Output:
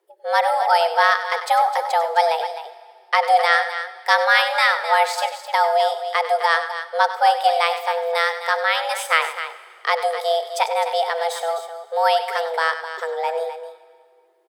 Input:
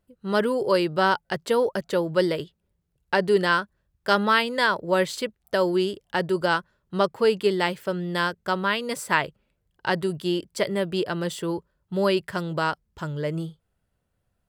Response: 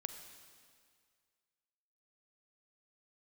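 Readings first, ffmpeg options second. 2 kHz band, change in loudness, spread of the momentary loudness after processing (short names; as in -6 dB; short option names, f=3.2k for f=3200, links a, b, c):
+6.5 dB, +5.0 dB, 10 LU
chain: -filter_complex "[0:a]afreqshift=330,aecho=1:1:97|258:0.251|0.282,asplit=2[a][b];[1:a]atrim=start_sample=2205[c];[b][c]afir=irnorm=-1:irlink=0,volume=0.5dB[d];[a][d]amix=inputs=2:normalize=0,volume=-1dB"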